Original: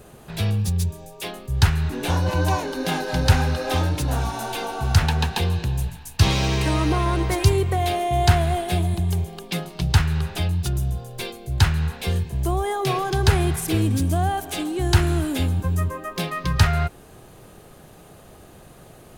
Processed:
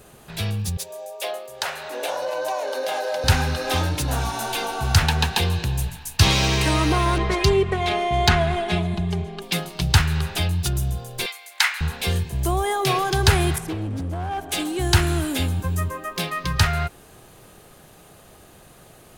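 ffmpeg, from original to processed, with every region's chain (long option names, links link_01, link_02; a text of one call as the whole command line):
ffmpeg -i in.wav -filter_complex "[0:a]asettb=1/sr,asplit=3[link_01][link_02][link_03];[link_01]atrim=end=0.774[link_04];[link_02]atrim=start=0.77:end=3.24,asetpts=PTS-STARTPTS,afade=type=in:duration=0.004:curve=qsin,afade=type=out:start_time=2.466:duration=0.004:curve=qsin,highpass=frequency=580:width_type=q:width=6.4,acompressor=threshold=-21dB:ratio=6:attack=3.2:release=140:knee=1:detection=peak[link_05];[link_03]atrim=start=3.236[link_06];[link_04][link_05]acrossfade=duration=0.004:curve1=hsin:curve2=qsin[link_07];[link_07][link_06]acrossfade=duration=0.004:curve1=qsin:curve2=hsin,asettb=1/sr,asplit=3[link_08][link_09][link_10];[link_08]atrim=end=7.184[link_11];[link_09]atrim=start=7.18:end=9.42,asetpts=PTS-STARTPTS,afade=type=in:duration=0.004:curve=qsin,afade=type=out:start_time=2.236:duration=0.004:curve=qsin,adynamicsmooth=sensitivity=1:basefreq=3400,aecho=1:1:4.8:0.65,atrim=end_sample=98784[link_12];[link_10]atrim=start=9.416[link_13];[link_11][link_12]acrossfade=duration=0.004:curve1=hsin:curve2=qsin[link_14];[link_14][link_13]acrossfade=duration=0.004:curve1=qsin:curve2=hsin,asettb=1/sr,asplit=3[link_15][link_16][link_17];[link_15]atrim=end=11.264[link_18];[link_16]atrim=start=11.26:end=11.81,asetpts=PTS-STARTPTS,afade=type=in:duration=0.004:curve=qsin,afade=type=out:start_time=0.546:duration=0.004:curve=qsin,highpass=frequency=840:width=0.5412,highpass=frequency=840:width=1.3066,equalizer=frequency=2100:width=4.8:gain=10.5[link_19];[link_17]atrim=start=11.806[link_20];[link_18][link_19]acrossfade=duration=0.004:curve1=hsin:curve2=qsin[link_21];[link_21][link_20]acrossfade=duration=0.004:curve1=qsin:curve2=hsin,asettb=1/sr,asplit=3[link_22][link_23][link_24];[link_22]atrim=end=13.584[link_25];[link_23]atrim=start=13.58:end=14.52,asetpts=PTS-STARTPTS,afade=type=in:duration=0.004:curve=qsin,afade=type=out:start_time=0.936:duration=0.004:curve=qsin,lowpass=frequency=1100:poles=1,acompressor=threshold=-22dB:ratio=6:attack=3.2:release=140:knee=1:detection=peak,asoftclip=type=hard:threshold=-23.5dB[link_26];[link_24]atrim=start=14.516[link_27];[link_25][link_26]acrossfade=duration=0.004:curve1=hsin:curve2=qsin[link_28];[link_28][link_27]acrossfade=duration=0.004:curve1=qsin:curve2=hsin,tiltshelf=frequency=970:gain=-3,dynaudnorm=framelen=370:gausssize=21:maxgain=11.5dB,volume=-1dB" out.wav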